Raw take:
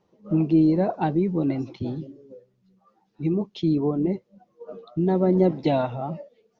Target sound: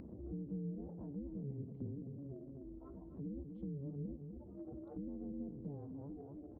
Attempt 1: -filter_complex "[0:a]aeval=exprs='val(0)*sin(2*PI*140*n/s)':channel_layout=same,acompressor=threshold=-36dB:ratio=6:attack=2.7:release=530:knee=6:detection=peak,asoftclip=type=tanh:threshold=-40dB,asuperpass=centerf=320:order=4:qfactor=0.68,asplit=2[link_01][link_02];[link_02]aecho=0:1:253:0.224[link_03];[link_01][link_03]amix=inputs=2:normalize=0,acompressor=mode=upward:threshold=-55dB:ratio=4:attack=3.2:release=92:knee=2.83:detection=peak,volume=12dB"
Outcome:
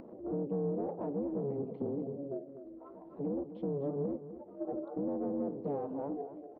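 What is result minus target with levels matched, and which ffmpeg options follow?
downward compressor: peak gain reduction −10 dB; 125 Hz band −7.5 dB
-filter_complex "[0:a]aeval=exprs='val(0)*sin(2*PI*140*n/s)':channel_layout=same,acompressor=threshold=-48dB:ratio=6:attack=2.7:release=530:knee=6:detection=peak,asoftclip=type=tanh:threshold=-40dB,asuperpass=centerf=140:order=4:qfactor=0.68,asplit=2[link_01][link_02];[link_02]aecho=0:1:253:0.224[link_03];[link_01][link_03]amix=inputs=2:normalize=0,acompressor=mode=upward:threshold=-55dB:ratio=4:attack=3.2:release=92:knee=2.83:detection=peak,volume=12dB"

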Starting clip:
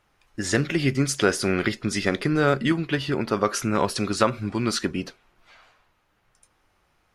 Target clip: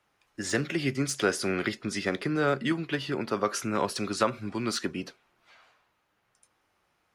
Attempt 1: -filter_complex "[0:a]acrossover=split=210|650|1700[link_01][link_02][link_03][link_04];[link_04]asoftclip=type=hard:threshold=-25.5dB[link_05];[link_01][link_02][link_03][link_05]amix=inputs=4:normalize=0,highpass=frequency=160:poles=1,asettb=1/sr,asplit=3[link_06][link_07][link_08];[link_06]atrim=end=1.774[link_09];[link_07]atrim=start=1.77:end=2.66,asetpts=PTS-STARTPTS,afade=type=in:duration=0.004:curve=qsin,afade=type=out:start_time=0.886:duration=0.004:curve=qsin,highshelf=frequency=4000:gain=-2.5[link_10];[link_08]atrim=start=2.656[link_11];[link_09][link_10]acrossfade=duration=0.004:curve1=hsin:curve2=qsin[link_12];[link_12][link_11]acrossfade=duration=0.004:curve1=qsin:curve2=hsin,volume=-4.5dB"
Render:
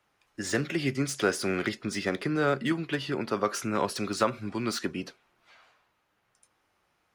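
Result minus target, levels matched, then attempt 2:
hard clipping: distortion +11 dB
-filter_complex "[0:a]acrossover=split=210|650|1700[link_01][link_02][link_03][link_04];[link_04]asoftclip=type=hard:threshold=-19.5dB[link_05];[link_01][link_02][link_03][link_05]amix=inputs=4:normalize=0,highpass=frequency=160:poles=1,asettb=1/sr,asplit=3[link_06][link_07][link_08];[link_06]atrim=end=1.774[link_09];[link_07]atrim=start=1.77:end=2.66,asetpts=PTS-STARTPTS,afade=type=in:duration=0.004:curve=qsin,afade=type=out:start_time=0.886:duration=0.004:curve=qsin,highshelf=frequency=4000:gain=-2.5[link_10];[link_08]atrim=start=2.656[link_11];[link_09][link_10]acrossfade=duration=0.004:curve1=hsin:curve2=qsin[link_12];[link_12][link_11]acrossfade=duration=0.004:curve1=qsin:curve2=hsin,volume=-4.5dB"

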